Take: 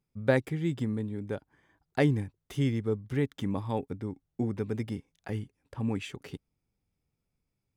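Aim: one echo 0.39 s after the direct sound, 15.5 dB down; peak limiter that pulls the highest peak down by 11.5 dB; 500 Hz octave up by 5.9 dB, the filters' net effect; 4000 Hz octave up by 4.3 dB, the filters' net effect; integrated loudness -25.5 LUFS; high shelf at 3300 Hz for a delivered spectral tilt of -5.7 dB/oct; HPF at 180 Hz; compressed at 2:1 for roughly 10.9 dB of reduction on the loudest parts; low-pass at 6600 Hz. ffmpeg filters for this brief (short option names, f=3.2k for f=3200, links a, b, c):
-af "highpass=180,lowpass=6.6k,equalizer=f=500:t=o:g=7,highshelf=f=3.3k:g=-4,equalizer=f=4k:t=o:g=8.5,acompressor=threshold=-35dB:ratio=2,alimiter=level_in=2dB:limit=-24dB:level=0:latency=1,volume=-2dB,aecho=1:1:390:0.168,volume=14dB"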